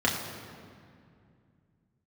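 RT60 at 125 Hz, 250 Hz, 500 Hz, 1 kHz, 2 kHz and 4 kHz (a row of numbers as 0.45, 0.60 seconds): 3.5, 3.2, 2.5, 2.2, 2.0, 1.5 seconds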